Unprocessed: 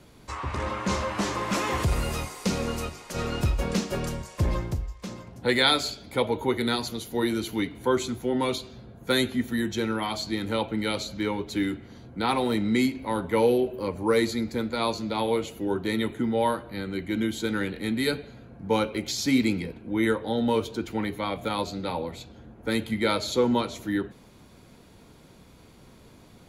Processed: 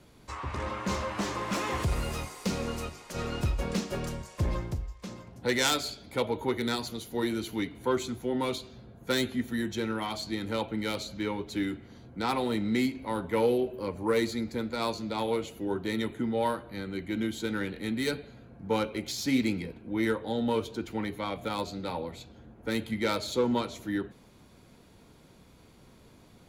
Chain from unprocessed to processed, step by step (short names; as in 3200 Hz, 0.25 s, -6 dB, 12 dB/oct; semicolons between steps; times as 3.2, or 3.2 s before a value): self-modulated delay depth 0.087 ms; gain -4 dB